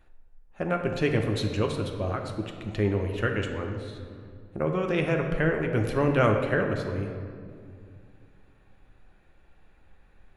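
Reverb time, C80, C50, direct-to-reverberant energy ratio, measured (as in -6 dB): 2.3 s, 7.0 dB, 5.5 dB, 2.5 dB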